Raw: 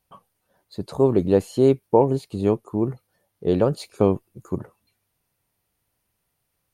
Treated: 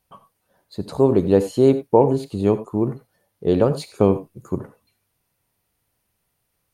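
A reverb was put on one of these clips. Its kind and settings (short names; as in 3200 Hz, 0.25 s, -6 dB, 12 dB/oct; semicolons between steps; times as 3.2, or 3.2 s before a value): non-linear reverb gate 0.11 s rising, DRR 12 dB; gain +2 dB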